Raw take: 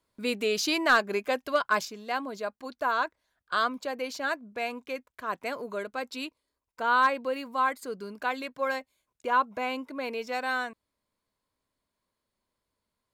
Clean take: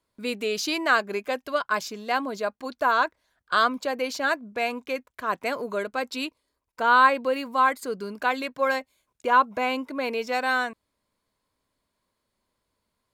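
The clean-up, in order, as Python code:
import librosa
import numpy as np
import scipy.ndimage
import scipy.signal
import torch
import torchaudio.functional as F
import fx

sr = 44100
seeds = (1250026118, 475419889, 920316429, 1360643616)

y = fx.fix_declip(x, sr, threshold_db=-14.0)
y = fx.fix_level(y, sr, at_s=1.85, step_db=5.5)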